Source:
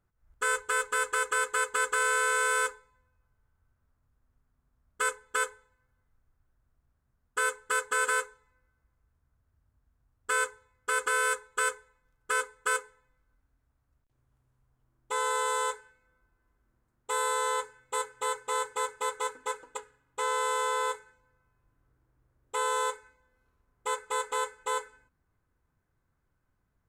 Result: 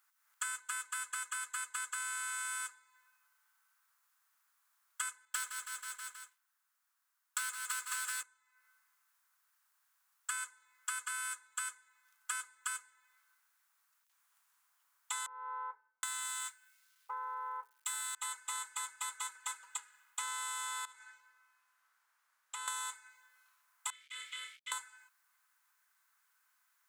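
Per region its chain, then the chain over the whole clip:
0:05.25–0:08.23: leveller curve on the samples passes 3 + repeating echo 160 ms, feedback 43%, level −8.5 dB
0:15.26–0:18.15: mu-law and A-law mismatch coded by A + multiband delay without the direct sound lows, highs 770 ms, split 960 Hz
0:20.85–0:22.68: high-shelf EQ 9,700 Hz −10.5 dB + downward compressor, threshold −45 dBFS
0:23.90–0:24.72: flutter between parallel walls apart 5.1 metres, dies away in 0.36 s + centre clipping without the shift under −44.5 dBFS + formant filter i
whole clip: high-pass filter 1,000 Hz 24 dB per octave; spectral tilt +3 dB per octave; downward compressor 8 to 1, threshold −44 dBFS; level +6 dB

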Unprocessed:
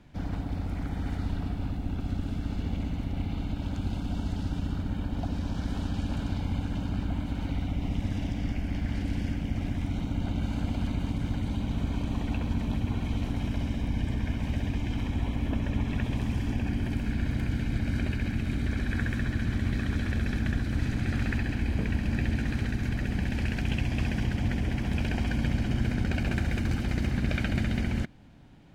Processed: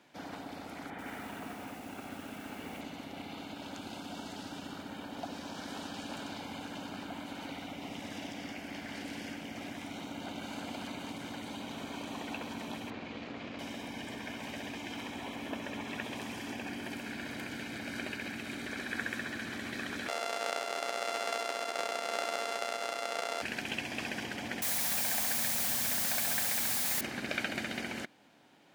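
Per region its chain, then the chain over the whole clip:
0:00.90–0:02.81: high shelf with overshoot 3,500 Hz −11.5 dB, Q 1.5 + feedback echo at a low word length 86 ms, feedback 55%, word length 8 bits, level −9 dB
0:12.90–0:13.59: lower of the sound and its delayed copy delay 0.44 ms + high-frequency loss of the air 180 metres + double-tracking delay 23 ms −12.5 dB
0:20.08–0:23.42: samples sorted by size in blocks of 64 samples + high-pass filter 420 Hz + high-frequency loss of the air 61 metres
0:24.62–0:27.01: phaser with its sweep stopped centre 1,900 Hz, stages 8 + bit-depth reduction 6 bits, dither triangular
whole clip: high-pass filter 410 Hz 12 dB per octave; high-shelf EQ 5,600 Hz +5 dB

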